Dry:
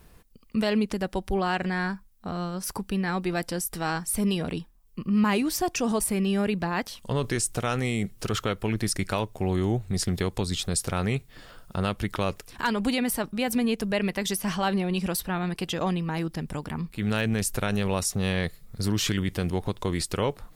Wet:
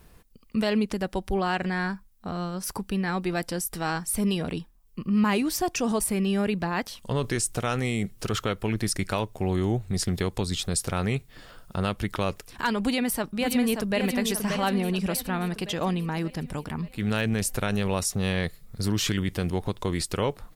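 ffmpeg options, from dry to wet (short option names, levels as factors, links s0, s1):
-filter_complex "[0:a]asplit=2[s0][s1];[s1]afade=t=in:st=12.82:d=0.01,afade=t=out:st=13.98:d=0.01,aecho=0:1:580|1160|1740|2320|2900|3480|4060:0.501187|0.275653|0.151609|0.083385|0.0458618|0.025224|0.0138732[s2];[s0][s2]amix=inputs=2:normalize=0"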